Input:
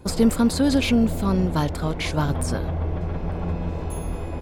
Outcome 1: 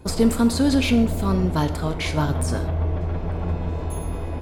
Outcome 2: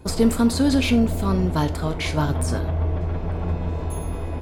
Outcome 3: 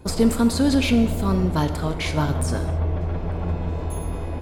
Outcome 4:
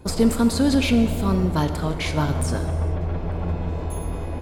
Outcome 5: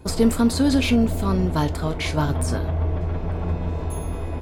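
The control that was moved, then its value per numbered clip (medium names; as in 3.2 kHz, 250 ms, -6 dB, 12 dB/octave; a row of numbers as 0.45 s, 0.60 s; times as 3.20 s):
gated-style reverb, gate: 190 ms, 120 ms, 300 ms, 480 ms, 80 ms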